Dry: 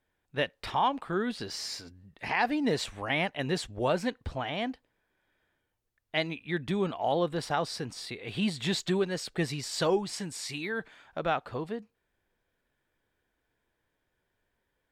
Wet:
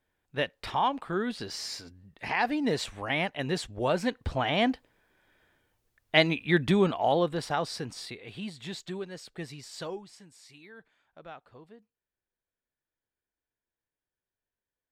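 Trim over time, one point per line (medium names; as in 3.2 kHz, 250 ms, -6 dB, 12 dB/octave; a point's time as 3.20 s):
3.85 s 0 dB
4.67 s +8 dB
6.59 s +8 dB
7.43 s 0 dB
8.03 s 0 dB
8.43 s -9 dB
9.79 s -9 dB
10.19 s -16.5 dB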